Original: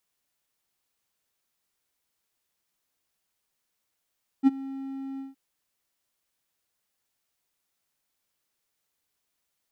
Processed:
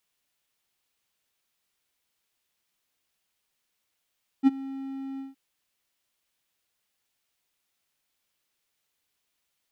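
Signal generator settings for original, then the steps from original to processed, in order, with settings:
ADSR triangle 270 Hz, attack 41 ms, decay 25 ms, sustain -20.5 dB, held 0.76 s, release 158 ms -10.5 dBFS
peaking EQ 2.9 kHz +4.5 dB 1.3 oct

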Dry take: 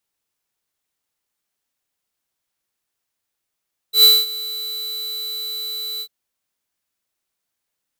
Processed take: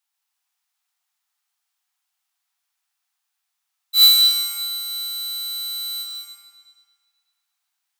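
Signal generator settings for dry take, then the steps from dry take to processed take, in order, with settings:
ADSR square 3.97 kHz, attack 105 ms, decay 220 ms, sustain -19 dB, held 2.08 s, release 66 ms -8.5 dBFS
Chebyshev high-pass 710 Hz, order 8; algorithmic reverb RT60 1.9 s, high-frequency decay 0.9×, pre-delay 80 ms, DRR 0 dB

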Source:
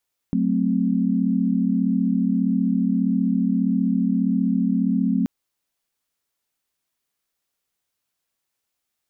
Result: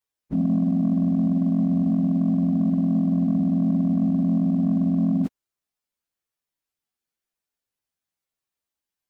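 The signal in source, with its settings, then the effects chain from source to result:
chord F#3/A3/C4 sine, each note -22 dBFS 4.93 s
frequency axis rescaled in octaves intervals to 115%; waveshaping leveller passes 1

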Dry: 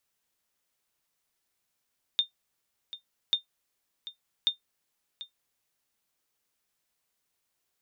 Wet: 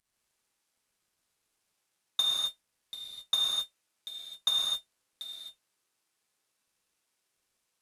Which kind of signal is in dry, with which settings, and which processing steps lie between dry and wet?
sonar ping 3.63 kHz, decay 0.12 s, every 1.14 s, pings 3, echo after 0.74 s, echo -15.5 dB -15.5 dBFS
CVSD coder 64 kbps; gated-style reverb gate 290 ms flat, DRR -6 dB

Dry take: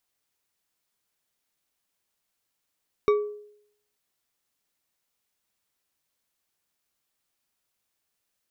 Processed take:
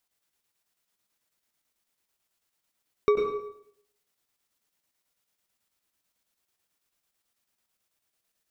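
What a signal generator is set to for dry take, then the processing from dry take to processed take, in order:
glass hit bar, lowest mode 417 Hz, decay 0.69 s, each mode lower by 8 dB, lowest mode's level -15 dB
square tremolo 9.1 Hz, depth 60%, duty 70%; plate-style reverb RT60 0.64 s, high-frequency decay 0.95×, pre-delay 85 ms, DRR 2 dB

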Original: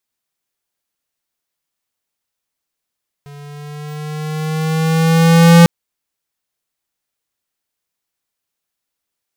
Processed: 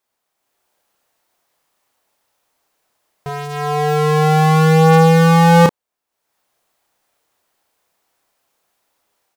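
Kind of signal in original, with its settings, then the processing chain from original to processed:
gliding synth tone square, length 2.40 s, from 143 Hz, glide +3 st, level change +31 dB, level -4.5 dB
peaking EQ 730 Hz +11 dB 2.2 oct; level rider gain up to 8 dB; doubling 31 ms -6 dB

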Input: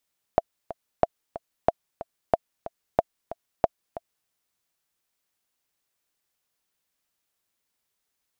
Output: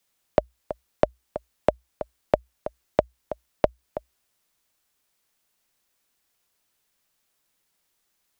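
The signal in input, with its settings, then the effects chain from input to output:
metronome 184 bpm, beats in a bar 2, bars 6, 672 Hz, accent 15.5 dB -4.5 dBFS
in parallel at 0 dB: compression, threshold -28 dBFS; on the sum: frequency shift -61 Hz

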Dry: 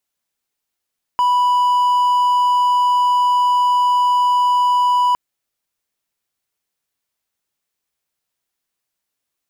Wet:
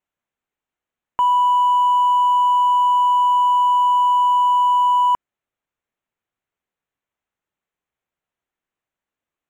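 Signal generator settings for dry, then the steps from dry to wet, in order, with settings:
tone triangle 986 Hz -10 dBFS 3.96 s
local Wiener filter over 9 samples

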